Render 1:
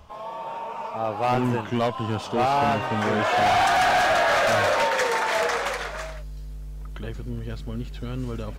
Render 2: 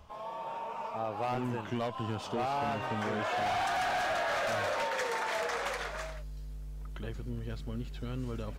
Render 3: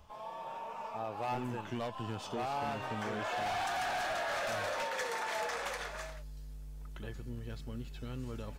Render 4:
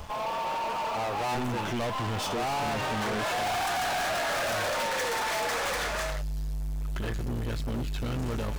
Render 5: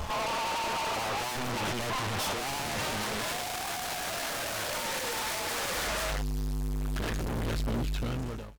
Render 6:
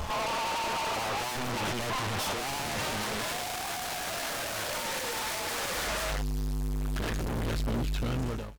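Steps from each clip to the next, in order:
downward compressor, threshold −24 dBFS, peak gain reduction 6 dB; level −6 dB
high-shelf EQ 5,100 Hz +4.5 dB; tuned comb filter 860 Hz, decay 0.32 s, mix 70%; level +6 dB
leveller curve on the samples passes 5
fade-out on the ending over 1.27 s; sine wavefolder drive 6 dB, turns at −27 dBFS; pitch vibrato 11 Hz 39 cents; level −1.5 dB
brickwall limiter −31.5 dBFS, peak gain reduction 5 dB; level +3.5 dB

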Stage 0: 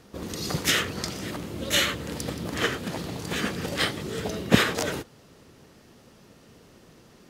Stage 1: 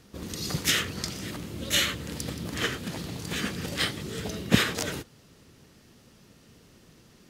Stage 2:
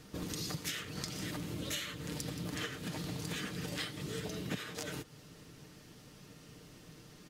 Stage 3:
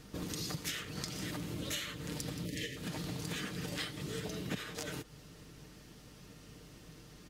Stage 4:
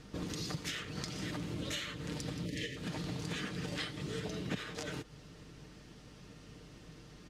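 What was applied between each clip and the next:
parametric band 680 Hz −6.5 dB 2.5 octaves
comb filter 6.6 ms, depth 45%; downward compressor 12 to 1, threshold −36 dBFS, peak gain reduction 23 dB
mains hum 50 Hz, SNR 20 dB; gain on a spectral selection 0:02.45–0:02.77, 620–1,700 Hz −25 dB; every ending faded ahead of time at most 500 dB per second
high-frequency loss of the air 54 metres; level +1 dB

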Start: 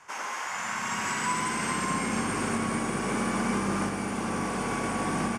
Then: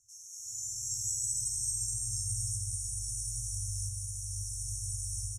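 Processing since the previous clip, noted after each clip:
brick-wall band-stop 120–5,400 Hz
automatic gain control gain up to 10 dB
level −5 dB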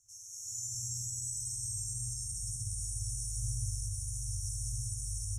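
brickwall limiter −29.5 dBFS, peak gain reduction 8.5 dB
spring reverb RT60 2 s, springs 58 ms, chirp 30 ms, DRR −8 dB

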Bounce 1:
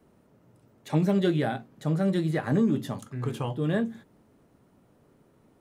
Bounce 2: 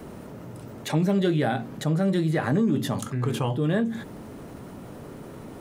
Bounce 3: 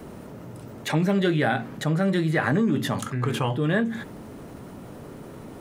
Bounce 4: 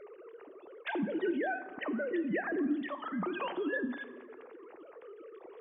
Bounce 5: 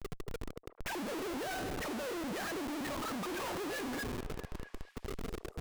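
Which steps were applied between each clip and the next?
envelope flattener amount 50%
dynamic equaliser 1,800 Hz, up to +7 dB, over −45 dBFS, Q 0.84
three sine waves on the formant tracks; downward compressor 2.5 to 1, threshold −29 dBFS, peak gain reduction 11 dB; dense smooth reverb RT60 1.4 s, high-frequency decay 0.6×, DRR 11.5 dB; level −4.5 dB
tube saturation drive 29 dB, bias 0.7; comparator with hysteresis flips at −49 dBFS; echo through a band-pass that steps 219 ms, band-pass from 550 Hz, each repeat 0.7 octaves, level −9.5 dB; level +2.5 dB

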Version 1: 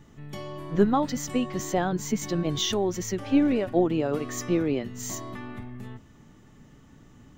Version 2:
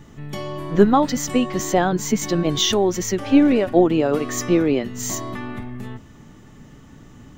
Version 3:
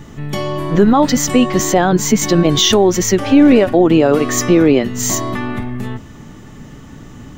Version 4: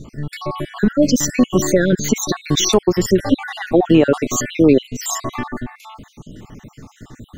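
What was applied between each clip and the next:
dynamic equaliser 110 Hz, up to −5 dB, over −41 dBFS, Q 1.1; level +8 dB
boost into a limiter +10 dB; level −1 dB
time-frequency cells dropped at random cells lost 58%

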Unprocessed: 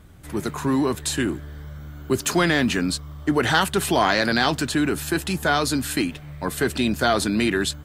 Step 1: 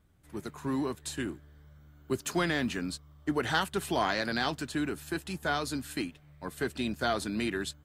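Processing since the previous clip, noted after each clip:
expander for the loud parts 1.5 to 1, over −36 dBFS
level −8.5 dB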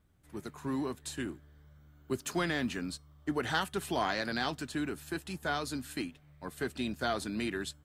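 tuned comb filter 250 Hz, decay 0.26 s, harmonics odd, mix 30%

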